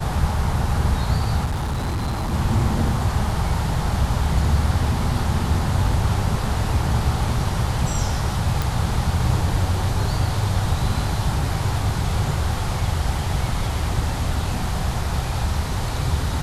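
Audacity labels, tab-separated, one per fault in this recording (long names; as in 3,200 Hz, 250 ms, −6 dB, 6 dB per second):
1.440000	2.340000	clipping −20.5 dBFS
8.620000	8.620000	click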